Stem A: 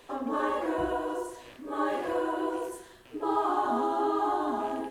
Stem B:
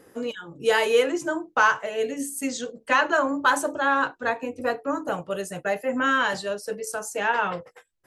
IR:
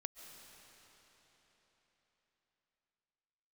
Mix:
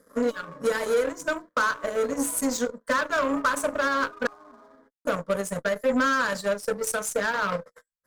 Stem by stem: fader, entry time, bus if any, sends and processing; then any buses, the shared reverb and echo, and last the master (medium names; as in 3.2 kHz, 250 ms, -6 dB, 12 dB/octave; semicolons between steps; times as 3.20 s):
-12.5 dB, 0.00 s, no send, low-pass 1.8 kHz 12 dB/octave; bass shelf 320 Hz -8 dB
+0.5 dB, 0.00 s, muted 4.27–5.05 s, no send, compression 6:1, threshold -25 dBFS, peak gain reduction 10.5 dB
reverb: none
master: waveshaping leveller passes 2; static phaser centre 530 Hz, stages 8; Chebyshev shaper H 6 -30 dB, 7 -21 dB, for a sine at -13.5 dBFS